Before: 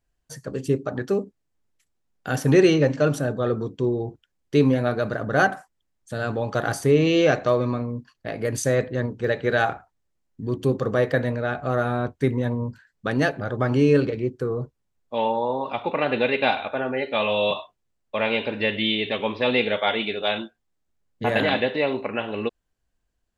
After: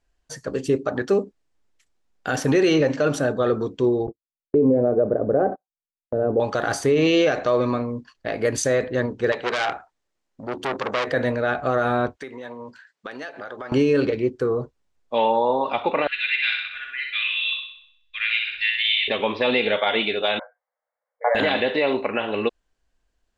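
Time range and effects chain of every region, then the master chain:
4.07–6.40 s: resonant low-pass 490 Hz, resonance Q 2 + gate -35 dBFS, range -36 dB
9.32–11.07 s: bass shelf 130 Hz -10.5 dB + transformer saturation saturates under 3.2 kHz
12.16–13.72 s: frequency weighting A + compression 8:1, threshold -35 dBFS
16.07–19.08 s: inverse Chebyshev band-stop 120–950 Hz + peaking EQ 9.7 kHz -12.5 dB 1.1 oct + flutter echo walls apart 10.8 m, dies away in 0.66 s
20.39–21.35 s: brick-wall FIR band-pass 470–2300 Hz + tilt EQ -3.5 dB/octave
whole clip: low-pass 7.7 kHz 12 dB/octave; peaking EQ 130 Hz -8.5 dB 1.5 oct; peak limiter -16 dBFS; trim +5.5 dB

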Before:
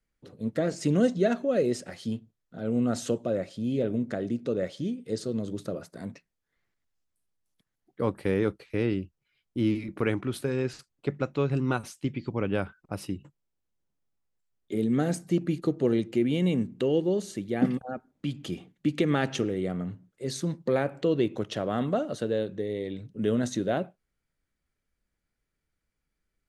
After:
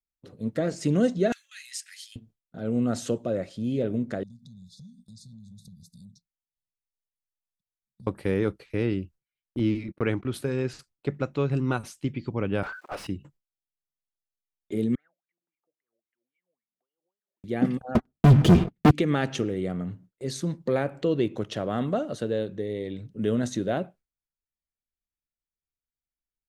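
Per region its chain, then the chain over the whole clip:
1.32–2.16 s: steep high-pass 1.8 kHz + treble shelf 6.4 kHz +10 dB
4.23–8.07 s: brick-wall FIR band-stop 230–3400 Hz + compression 5:1, threshold -47 dBFS
9.59–10.34 s: gate -39 dBFS, range -31 dB + low-pass 7.2 kHz
12.63–13.07 s: companding laws mixed up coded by mu + high-pass 610 Hz + overdrive pedal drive 27 dB, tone 1.1 kHz, clips at -23.5 dBFS
14.95–17.44 s: compression 2.5:1, threshold -42 dBFS + wah-wah 3.7 Hz 540–2300 Hz, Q 19
17.95–18.91 s: tilt EQ -3 dB/octave + waveshaping leveller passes 5 + comb of notches 280 Hz
whole clip: bass shelf 83 Hz +6 dB; gate with hold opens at -44 dBFS

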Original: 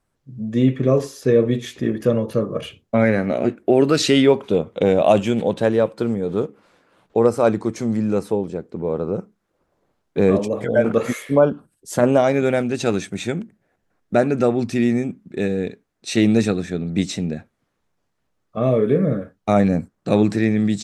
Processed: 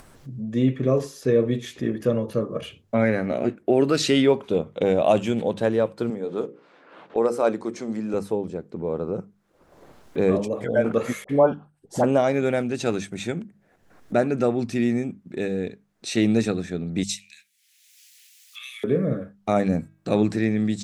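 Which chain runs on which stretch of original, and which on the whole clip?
6.10–8.14 s: level-controlled noise filter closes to 2.9 kHz, open at -15 dBFS + high-pass 230 Hz + hum notches 60/120/180/240/300/360/420/480/540 Hz
11.24–12.04 s: low-pass 2.6 kHz 6 dB/octave + peaking EQ 800 Hz +10 dB 0.38 oct + phase dispersion highs, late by 53 ms, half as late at 940 Hz
17.03–18.84 s: steep high-pass 2.2 kHz + treble shelf 5.4 kHz +10.5 dB
19.55–20.08 s: treble shelf 9.1 kHz +6.5 dB + de-hum 321.7 Hz, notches 12
whole clip: hum notches 50/100/150/200 Hz; upward compressor, threshold -25 dBFS; trim -4 dB

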